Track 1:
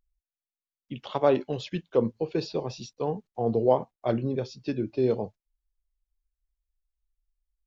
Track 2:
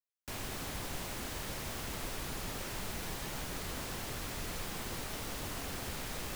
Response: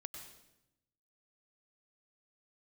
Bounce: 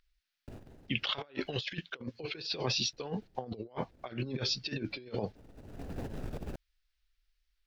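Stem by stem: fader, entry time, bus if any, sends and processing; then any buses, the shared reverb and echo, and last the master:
-4.0 dB, 0.00 s, no send, high-order bell 2.7 kHz +14 dB 2.3 oct
+1.0 dB, 0.20 s, muted 1.55–2.93 s, no send, median filter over 41 samples; compressor with a negative ratio -45 dBFS, ratio -0.5; auto duck -22 dB, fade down 0.65 s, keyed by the first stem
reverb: none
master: compressor with a negative ratio -36 dBFS, ratio -0.5; warped record 45 rpm, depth 100 cents

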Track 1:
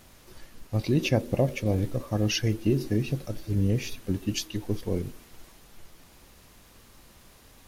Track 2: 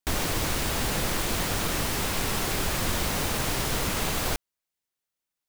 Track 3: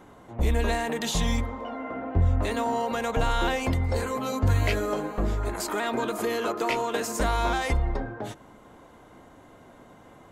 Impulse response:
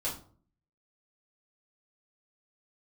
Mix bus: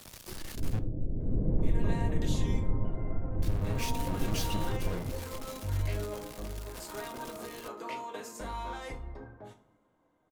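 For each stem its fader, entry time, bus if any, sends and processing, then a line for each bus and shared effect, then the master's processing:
-17.5 dB, 0.00 s, muted 0.79–3.42 s, bus A, send -20 dB, fuzz box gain 50 dB, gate -50 dBFS
+1.5 dB, 0.50 s, no bus, send -14 dB, Gaussian low-pass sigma 22 samples; auto duck -11 dB, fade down 0.90 s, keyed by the first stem
-16.5 dB, 1.20 s, bus A, send -4 dB, none
bus A: 0.0 dB, bass shelf 350 Hz +5 dB; peak limiter -31 dBFS, peak gain reduction 10.5 dB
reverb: on, RT60 0.45 s, pre-delay 3 ms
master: three bands expanded up and down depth 40%

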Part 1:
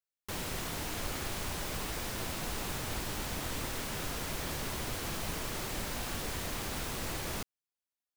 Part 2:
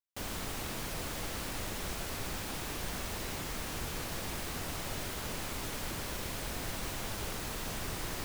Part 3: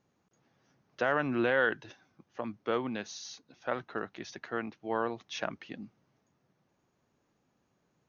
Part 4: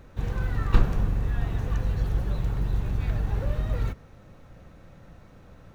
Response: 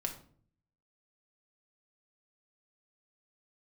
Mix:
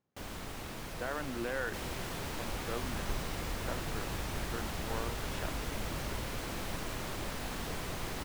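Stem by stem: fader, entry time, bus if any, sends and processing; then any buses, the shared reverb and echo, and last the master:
-2.5 dB, 1.45 s, no send, none
-3.0 dB, 0.00 s, no send, none
-9.0 dB, 0.00 s, no send, none
-18.5 dB, 2.35 s, no send, none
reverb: none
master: treble shelf 4.2 kHz -6.5 dB

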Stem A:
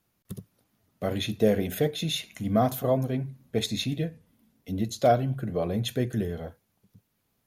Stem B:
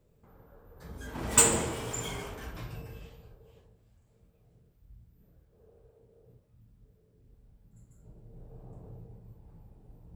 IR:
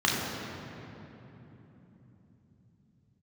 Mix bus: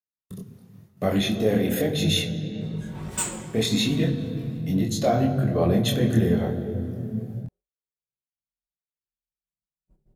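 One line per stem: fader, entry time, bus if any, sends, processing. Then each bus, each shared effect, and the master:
-1.0 dB, 0.00 s, muted 2.27–3.49 s, send -20.5 dB, level rider gain up to 13.5 dB; peak limiter -10 dBFS, peak gain reduction 8.5 dB
+1.5 dB, 1.80 s, no send, gate -51 dBFS, range -15 dB; comb 5.4 ms, depth 91%; auto duck -9 dB, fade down 0.70 s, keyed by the first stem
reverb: on, RT60 3.5 s, pre-delay 3 ms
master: expander -40 dBFS; chorus voices 2, 0.97 Hz, delay 24 ms, depth 4 ms

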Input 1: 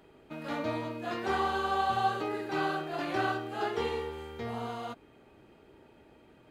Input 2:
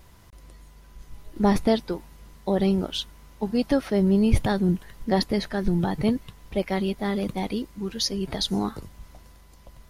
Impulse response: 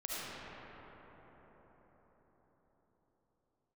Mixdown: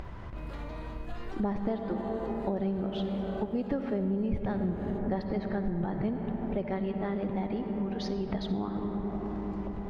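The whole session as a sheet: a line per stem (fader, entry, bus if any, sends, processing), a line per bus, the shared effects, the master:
-7.0 dB, 0.05 s, no send, peak limiter -29.5 dBFS, peak gain reduction 11.5 dB
+1.5 dB, 0.00 s, send -7.5 dB, low-pass 1.8 kHz 12 dB/octave; upward compressor, threshold -36 dBFS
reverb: on, RT60 5.3 s, pre-delay 30 ms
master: compression 4:1, threshold -30 dBFS, peak gain reduction 17.5 dB

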